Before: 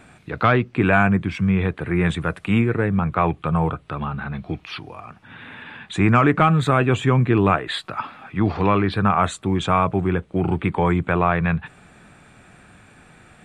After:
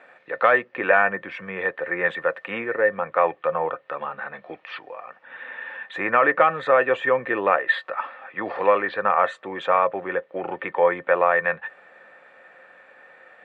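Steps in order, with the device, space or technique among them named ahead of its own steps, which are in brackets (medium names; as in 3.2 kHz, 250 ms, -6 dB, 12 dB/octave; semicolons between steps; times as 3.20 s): tin-can telephone (band-pass 630–2300 Hz; small resonant body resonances 530/1800 Hz, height 18 dB, ringing for 75 ms)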